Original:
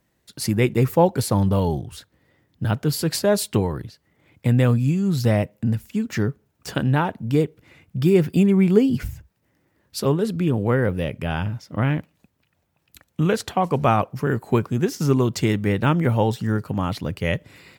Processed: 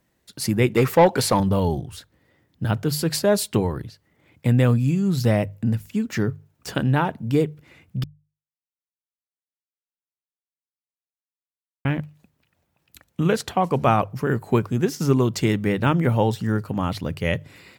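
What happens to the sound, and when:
0.74–1.40 s: overdrive pedal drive 15 dB, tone 4.6 kHz, clips at -5.5 dBFS
8.04–11.85 s: mute
whole clip: hum notches 50/100/150 Hz

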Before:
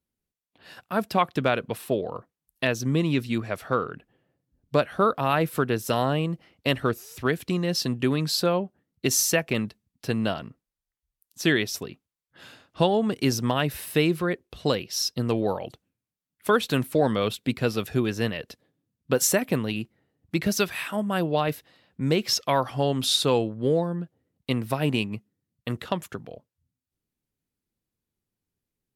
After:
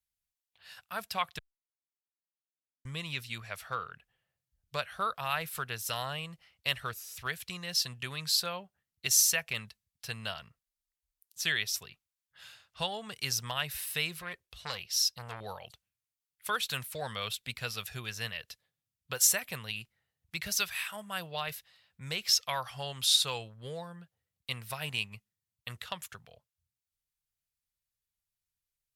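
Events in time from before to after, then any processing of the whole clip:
1.39–2.85 s: mute
14.19–15.41 s: transformer saturation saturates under 1.2 kHz
whole clip: amplifier tone stack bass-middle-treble 10-0-10

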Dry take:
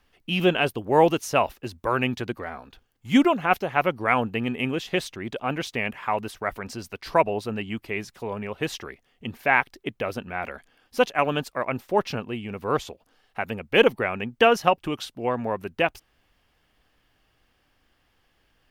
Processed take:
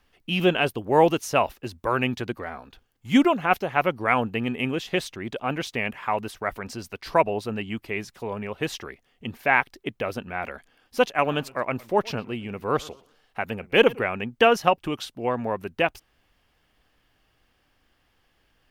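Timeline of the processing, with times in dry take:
11.16–14.04 s: modulated delay 117 ms, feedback 30%, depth 203 cents, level -22.5 dB

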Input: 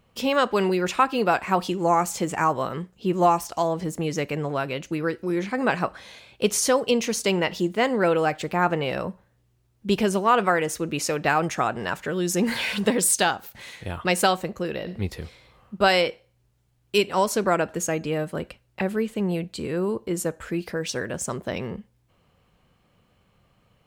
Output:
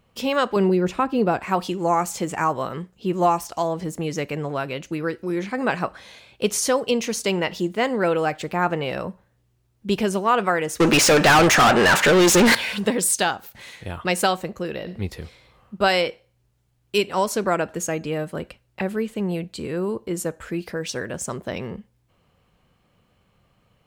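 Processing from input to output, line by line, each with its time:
0.56–1.41 s: tilt shelf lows +7.5 dB, about 640 Hz
10.80–12.55 s: overdrive pedal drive 34 dB, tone 5.8 kHz, clips at -7.5 dBFS

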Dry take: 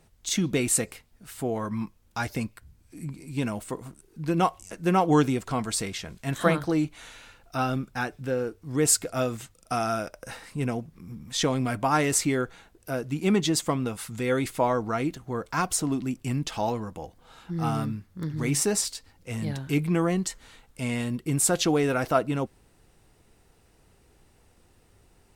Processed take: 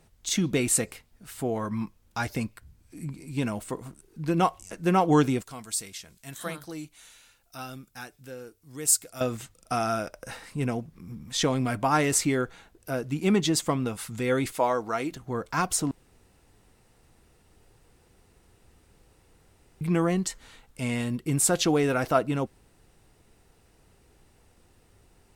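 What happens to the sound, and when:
5.42–9.21 s: pre-emphasis filter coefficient 0.8
14.52–15.12 s: tone controls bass -11 dB, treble +3 dB
15.91–19.81 s: room tone

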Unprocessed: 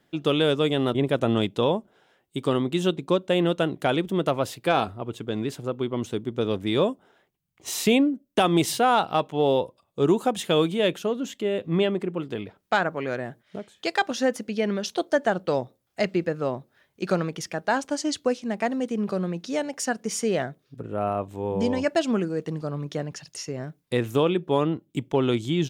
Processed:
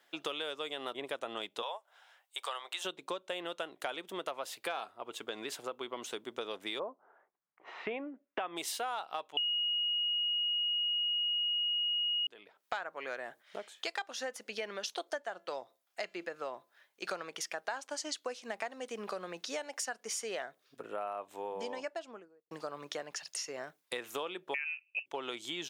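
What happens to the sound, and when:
1.62–2.85 s: high-pass 620 Hz 24 dB/octave
6.78–8.55 s: low-pass 1.2 kHz -> 2.7 kHz 24 dB/octave
9.37–12.27 s: bleep 2.88 kHz -8.5 dBFS
15.22–17.07 s: feedback comb 340 Hz, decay 0.29 s, mix 40%
21.28–22.51 s: studio fade out
24.54–25.06 s: frequency inversion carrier 2.8 kHz
whole clip: high-pass 720 Hz 12 dB/octave; compression 5:1, threshold -38 dBFS; trim +2 dB

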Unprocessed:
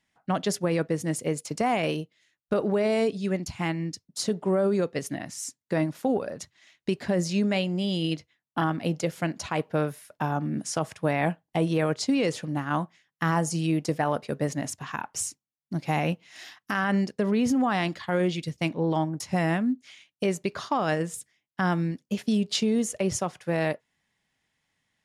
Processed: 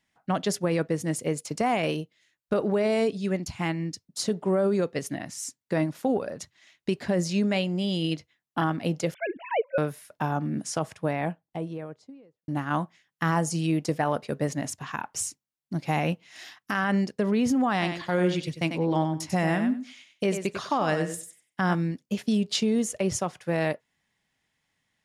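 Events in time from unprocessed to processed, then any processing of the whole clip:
9.14–9.78 s: formants replaced by sine waves
10.51–12.48 s: studio fade out
17.72–21.75 s: thinning echo 95 ms, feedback 17%, high-pass 220 Hz, level -7 dB

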